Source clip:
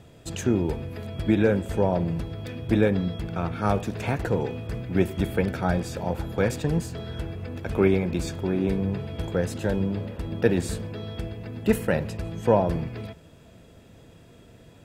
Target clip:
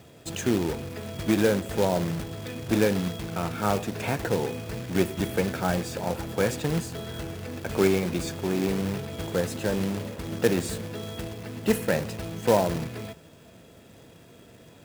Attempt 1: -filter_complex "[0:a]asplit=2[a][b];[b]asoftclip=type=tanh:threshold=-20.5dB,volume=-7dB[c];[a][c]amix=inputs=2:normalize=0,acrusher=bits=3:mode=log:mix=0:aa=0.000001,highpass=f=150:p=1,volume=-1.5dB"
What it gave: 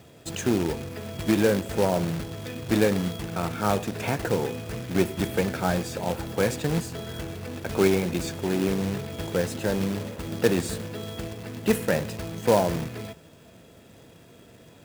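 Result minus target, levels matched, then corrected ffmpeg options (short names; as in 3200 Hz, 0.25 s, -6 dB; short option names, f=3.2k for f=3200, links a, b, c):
soft clip: distortion -5 dB
-filter_complex "[0:a]asplit=2[a][b];[b]asoftclip=type=tanh:threshold=-28.5dB,volume=-7dB[c];[a][c]amix=inputs=2:normalize=0,acrusher=bits=3:mode=log:mix=0:aa=0.000001,highpass=f=150:p=1,volume=-1.5dB"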